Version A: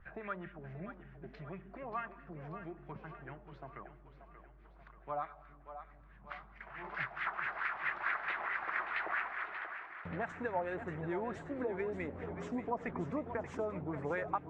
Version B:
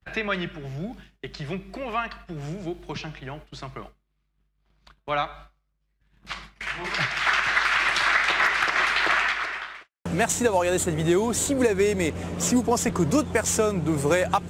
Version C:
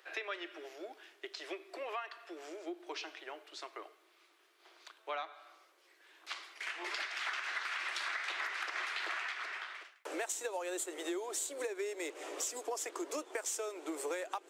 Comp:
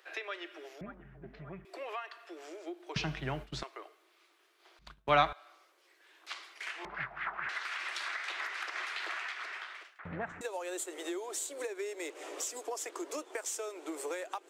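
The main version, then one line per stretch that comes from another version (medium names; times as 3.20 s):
C
0.81–1.65 s: from A
2.96–3.63 s: from B
4.79–5.33 s: from B
6.85–7.49 s: from A
9.99–10.41 s: from A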